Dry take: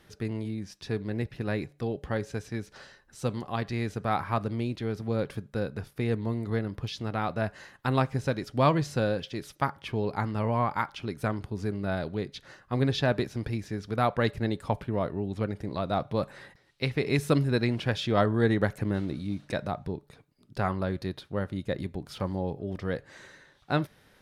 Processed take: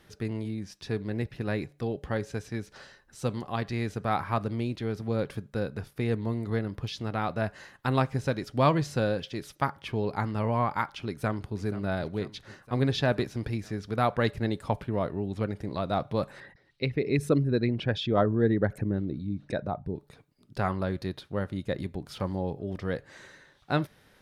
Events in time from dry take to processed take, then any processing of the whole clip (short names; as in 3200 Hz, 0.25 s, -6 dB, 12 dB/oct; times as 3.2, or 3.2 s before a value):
11.04–11.59 echo throw 0.48 s, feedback 70%, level -15.5 dB
16.4–19.96 formant sharpening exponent 1.5